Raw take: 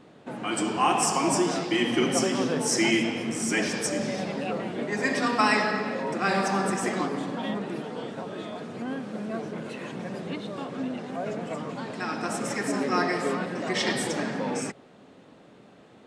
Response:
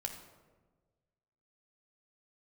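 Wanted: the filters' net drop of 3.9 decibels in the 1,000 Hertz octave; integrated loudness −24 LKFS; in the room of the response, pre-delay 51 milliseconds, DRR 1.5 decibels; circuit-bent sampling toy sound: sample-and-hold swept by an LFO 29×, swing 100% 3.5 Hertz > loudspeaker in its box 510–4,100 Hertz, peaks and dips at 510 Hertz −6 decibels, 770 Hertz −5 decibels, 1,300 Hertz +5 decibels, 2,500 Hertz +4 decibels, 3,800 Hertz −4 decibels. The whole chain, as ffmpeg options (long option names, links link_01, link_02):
-filter_complex "[0:a]equalizer=frequency=1000:width_type=o:gain=-5,asplit=2[link_01][link_02];[1:a]atrim=start_sample=2205,adelay=51[link_03];[link_02][link_03]afir=irnorm=-1:irlink=0,volume=-1dB[link_04];[link_01][link_04]amix=inputs=2:normalize=0,acrusher=samples=29:mix=1:aa=0.000001:lfo=1:lforange=29:lforate=3.5,highpass=510,equalizer=frequency=510:width_type=q:width=4:gain=-6,equalizer=frequency=770:width_type=q:width=4:gain=-5,equalizer=frequency=1300:width_type=q:width=4:gain=5,equalizer=frequency=2500:width_type=q:width=4:gain=4,equalizer=frequency=3800:width_type=q:width=4:gain=-4,lowpass=frequency=4100:width=0.5412,lowpass=frequency=4100:width=1.3066,volume=7.5dB"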